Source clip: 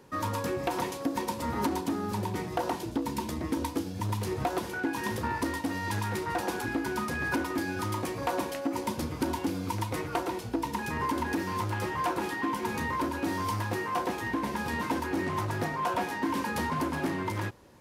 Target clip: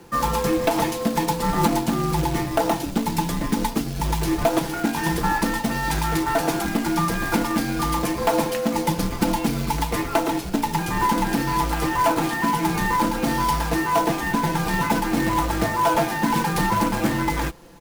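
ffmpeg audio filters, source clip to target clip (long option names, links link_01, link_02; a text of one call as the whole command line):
ffmpeg -i in.wav -af "afreqshift=-48,acrusher=bits=3:mode=log:mix=0:aa=0.000001,aecho=1:1:5.9:0.5,volume=8dB" out.wav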